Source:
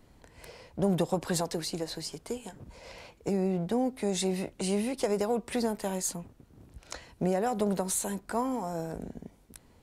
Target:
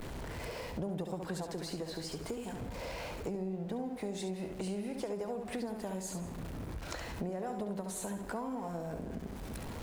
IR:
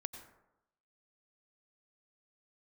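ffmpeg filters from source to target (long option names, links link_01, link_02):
-filter_complex "[0:a]aeval=exprs='val(0)+0.5*0.00841*sgn(val(0))':channel_layout=same,highshelf=frequency=3000:gain=-7.5,asplit=2[link_01][link_02];[1:a]atrim=start_sample=2205,adelay=69[link_03];[link_02][link_03]afir=irnorm=-1:irlink=0,volume=-4dB[link_04];[link_01][link_04]amix=inputs=2:normalize=0,acompressor=threshold=-42dB:ratio=4,volume=4dB"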